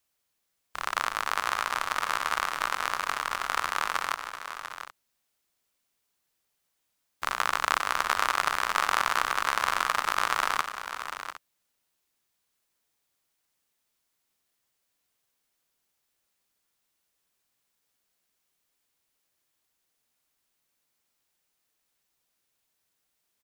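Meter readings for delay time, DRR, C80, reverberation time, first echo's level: 93 ms, no reverb, no reverb, no reverb, -14.5 dB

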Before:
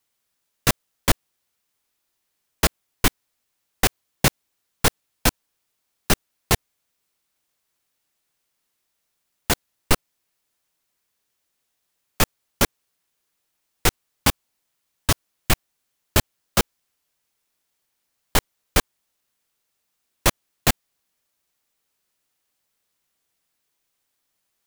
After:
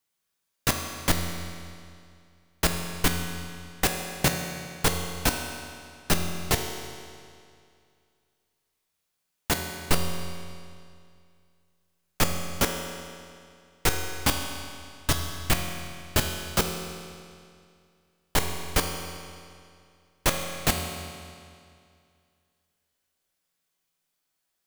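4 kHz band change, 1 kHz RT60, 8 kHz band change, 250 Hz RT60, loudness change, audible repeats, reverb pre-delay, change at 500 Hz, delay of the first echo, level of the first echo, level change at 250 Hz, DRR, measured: -3.0 dB, 2.3 s, -3.5 dB, 2.3 s, -4.5 dB, no echo, 5 ms, -3.0 dB, no echo, no echo, -3.0 dB, 3.0 dB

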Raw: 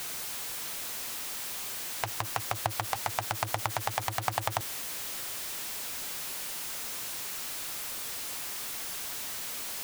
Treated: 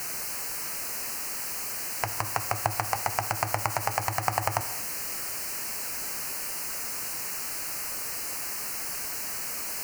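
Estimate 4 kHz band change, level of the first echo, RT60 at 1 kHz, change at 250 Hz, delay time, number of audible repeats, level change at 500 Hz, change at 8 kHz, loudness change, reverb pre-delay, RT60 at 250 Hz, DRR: 0.0 dB, no echo, 0.90 s, +4.0 dB, no echo, no echo, +4.0 dB, +4.0 dB, +3.5 dB, 5 ms, 0.90 s, 9.5 dB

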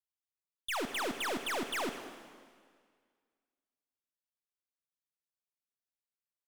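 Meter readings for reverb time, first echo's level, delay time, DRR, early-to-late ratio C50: 1.9 s, -17.5 dB, 196 ms, 7.5 dB, 8.0 dB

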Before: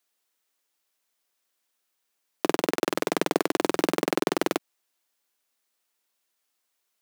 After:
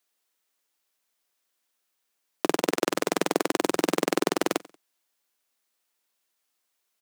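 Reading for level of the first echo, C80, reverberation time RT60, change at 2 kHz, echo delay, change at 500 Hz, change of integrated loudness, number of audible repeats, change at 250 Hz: -22.0 dB, no reverb, no reverb, +0.5 dB, 92 ms, 0.0 dB, +0.5 dB, 2, 0.0 dB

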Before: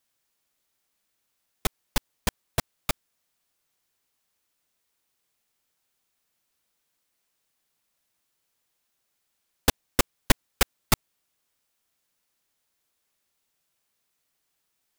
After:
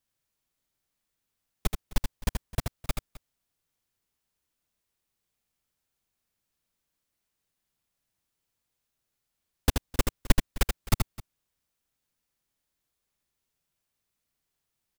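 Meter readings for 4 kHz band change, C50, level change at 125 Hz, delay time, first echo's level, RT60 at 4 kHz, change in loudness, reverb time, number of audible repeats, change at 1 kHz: -6.5 dB, no reverb, +2.5 dB, 79 ms, -5.5 dB, no reverb, -3.5 dB, no reverb, 2, -6.0 dB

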